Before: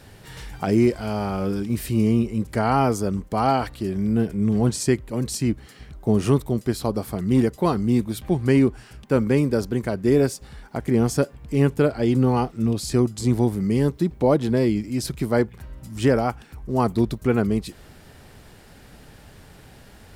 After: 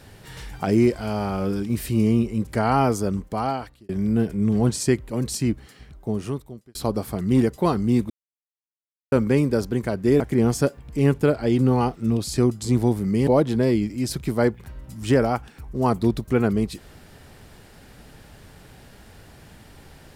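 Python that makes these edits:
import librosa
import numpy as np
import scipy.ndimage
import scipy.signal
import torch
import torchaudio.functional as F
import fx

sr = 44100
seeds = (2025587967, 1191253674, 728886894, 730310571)

y = fx.edit(x, sr, fx.fade_out_span(start_s=3.14, length_s=0.75),
    fx.fade_out_span(start_s=5.43, length_s=1.32),
    fx.silence(start_s=8.1, length_s=1.02),
    fx.cut(start_s=10.2, length_s=0.56),
    fx.cut(start_s=13.83, length_s=0.38), tone=tone)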